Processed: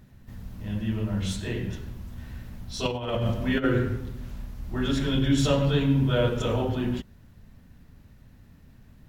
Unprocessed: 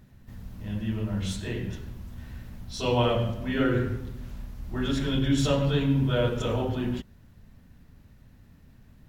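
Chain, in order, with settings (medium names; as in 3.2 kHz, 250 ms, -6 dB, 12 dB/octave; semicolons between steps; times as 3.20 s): 2.85–3.64 s: compressor with a negative ratio -27 dBFS, ratio -0.5; trim +1.5 dB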